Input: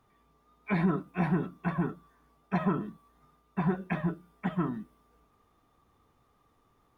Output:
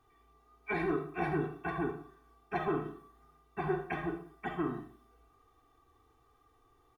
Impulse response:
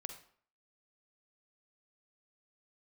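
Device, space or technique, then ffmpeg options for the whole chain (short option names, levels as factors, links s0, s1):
microphone above a desk: -filter_complex "[0:a]aecho=1:1:2.6:0.9[s0];[1:a]atrim=start_sample=2205[s1];[s0][s1]afir=irnorm=-1:irlink=0"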